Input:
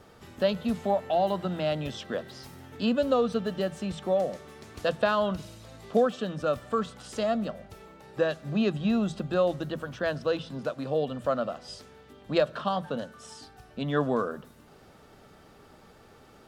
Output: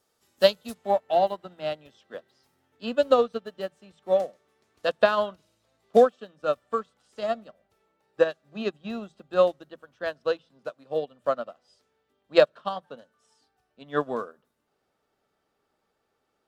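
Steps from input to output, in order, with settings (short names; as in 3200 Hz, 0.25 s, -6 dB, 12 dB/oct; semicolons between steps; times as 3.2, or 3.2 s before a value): tone controls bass -9 dB, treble +14 dB, from 0.73 s treble 0 dB; upward expander 2.5:1, over -39 dBFS; gain +8.5 dB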